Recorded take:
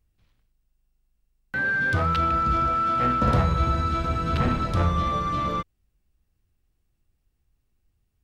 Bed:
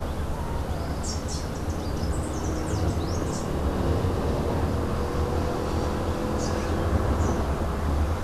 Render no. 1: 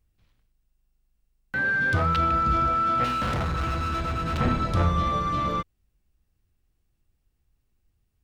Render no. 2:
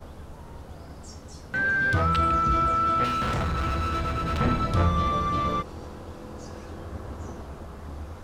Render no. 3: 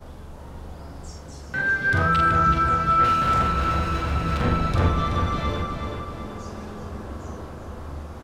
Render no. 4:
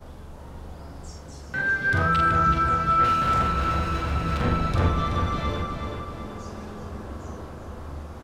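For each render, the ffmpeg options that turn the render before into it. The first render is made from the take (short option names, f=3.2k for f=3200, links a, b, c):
-filter_complex "[0:a]asettb=1/sr,asplit=3[a][b][c];[a]atrim=end=3.044[d];[b]atrim=start=3.04:end=4.41,asetpts=PTS-STARTPTS,afade=t=in:d=0.004:c=qsin,afade=t=out:st=1.366:d=0.004:c=qsin,volume=24.5dB,asoftclip=hard,volume=-24.5dB[e];[c]atrim=start=4.406[f];[d][e]acrossfade=d=0.004:c1=hsin:c2=qsin[g];[g][f]acrossfade=d=0.004:c1=qsin:c2=hsin"
-filter_complex "[1:a]volume=-13dB[a];[0:a][a]amix=inputs=2:normalize=0"
-filter_complex "[0:a]asplit=2[a][b];[b]adelay=43,volume=-4dB[c];[a][c]amix=inputs=2:normalize=0,asplit=2[d][e];[e]adelay=378,lowpass=f=3.8k:p=1,volume=-4.5dB,asplit=2[f][g];[g]adelay=378,lowpass=f=3.8k:p=1,volume=0.54,asplit=2[h][i];[i]adelay=378,lowpass=f=3.8k:p=1,volume=0.54,asplit=2[j][k];[k]adelay=378,lowpass=f=3.8k:p=1,volume=0.54,asplit=2[l][m];[m]adelay=378,lowpass=f=3.8k:p=1,volume=0.54,asplit=2[n][o];[o]adelay=378,lowpass=f=3.8k:p=1,volume=0.54,asplit=2[p][q];[q]adelay=378,lowpass=f=3.8k:p=1,volume=0.54[r];[d][f][h][j][l][n][p][r]amix=inputs=8:normalize=0"
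-af "volume=-1.5dB"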